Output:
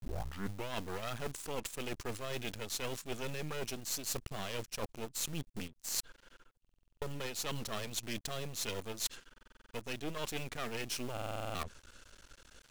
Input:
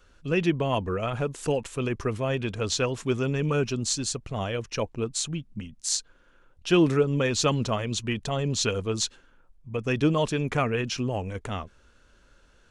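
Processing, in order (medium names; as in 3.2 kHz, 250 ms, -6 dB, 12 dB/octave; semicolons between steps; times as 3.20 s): tape start-up on the opening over 0.73 s; half-wave rectifier; in parallel at -10 dB: bit crusher 6-bit; on the sum: treble shelf 2.9 kHz +11 dB; reverse; compression 16:1, threshold -36 dBFS, peak gain reduction 23 dB; reverse; buffer glitch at 6.60/9.32/11.13 s, samples 2048, times 8; trim +2 dB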